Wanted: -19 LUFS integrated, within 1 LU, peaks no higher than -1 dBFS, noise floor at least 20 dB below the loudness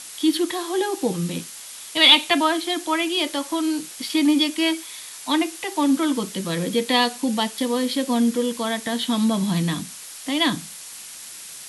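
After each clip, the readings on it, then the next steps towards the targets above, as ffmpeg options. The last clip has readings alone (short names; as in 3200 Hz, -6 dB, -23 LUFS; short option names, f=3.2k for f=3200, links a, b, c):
noise floor -39 dBFS; noise floor target -42 dBFS; loudness -21.5 LUFS; peak -2.0 dBFS; loudness target -19.0 LUFS
-> -af "afftdn=nr=6:nf=-39"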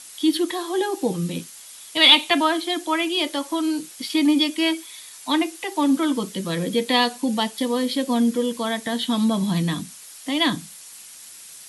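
noise floor -43 dBFS; loudness -21.5 LUFS; peak -2.0 dBFS; loudness target -19.0 LUFS
-> -af "volume=2.5dB,alimiter=limit=-1dB:level=0:latency=1"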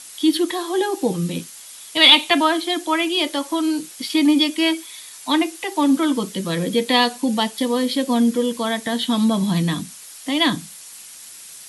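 loudness -19.0 LUFS; peak -1.0 dBFS; noise floor -40 dBFS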